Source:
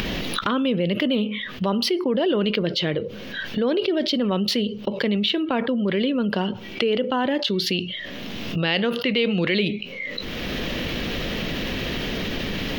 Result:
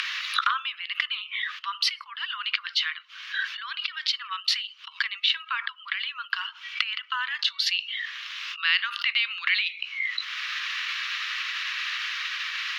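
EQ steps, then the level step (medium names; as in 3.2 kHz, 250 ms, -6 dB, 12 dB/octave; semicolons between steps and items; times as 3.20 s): steep high-pass 1.1 kHz 72 dB/octave; dynamic bell 3.2 kHz, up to -5 dB, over -43 dBFS, Q 8; distance through air 67 m; +3.5 dB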